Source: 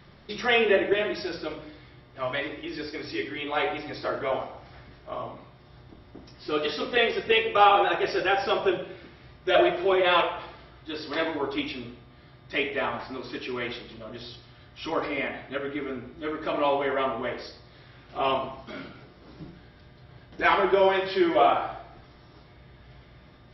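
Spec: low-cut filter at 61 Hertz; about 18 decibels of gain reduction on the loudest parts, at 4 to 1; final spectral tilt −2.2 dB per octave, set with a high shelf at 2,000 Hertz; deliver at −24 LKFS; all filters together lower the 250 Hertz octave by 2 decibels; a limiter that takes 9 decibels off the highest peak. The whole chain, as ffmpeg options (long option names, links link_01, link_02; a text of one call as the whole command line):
ffmpeg -i in.wav -af "highpass=61,equalizer=frequency=250:width_type=o:gain=-3.5,highshelf=frequency=2000:gain=3.5,acompressor=threshold=-37dB:ratio=4,volume=18dB,alimiter=limit=-13.5dB:level=0:latency=1" out.wav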